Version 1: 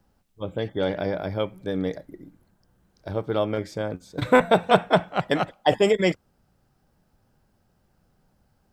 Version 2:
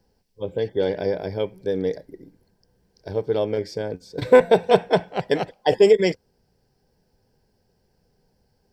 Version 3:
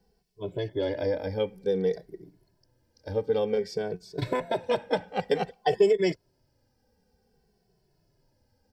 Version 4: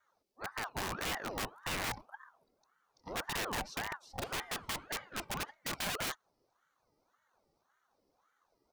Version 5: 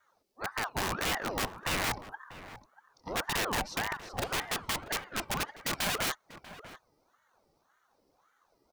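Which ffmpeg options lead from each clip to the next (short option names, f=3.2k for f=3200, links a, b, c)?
-af "superequalizer=7b=2.51:10b=0.355:14b=2.51,volume=-1.5dB"
-filter_complex "[0:a]acompressor=threshold=-18dB:ratio=3,asplit=2[a][b];[b]adelay=2.2,afreqshift=-0.54[c];[a][c]amix=inputs=2:normalize=1"
-af "aeval=exprs='(mod(15*val(0)+1,2)-1)/15':c=same,aeval=exprs='val(0)*sin(2*PI*890*n/s+890*0.6/1.8*sin(2*PI*1.8*n/s))':c=same,volume=-5dB"
-filter_complex "[0:a]asplit=2[a][b];[b]adelay=641.4,volume=-14dB,highshelf=f=4k:g=-14.4[c];[a][c]amix=inputs=2:normalize=0,volume=5.5dB"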